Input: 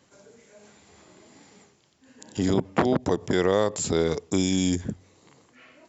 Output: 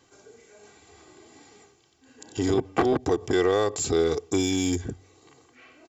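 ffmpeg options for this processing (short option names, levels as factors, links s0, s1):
-filter_complex "[0:a]bandreject=f=1800:w=20,aecho=1:1:2.6:0.63,asplit=2[s0][s1];[s1]asoftclip=type=hard:threshold=0.075,volume=0.447[s2];[s0][s2]amix=inputs=2:normalize=0,volume=0.668"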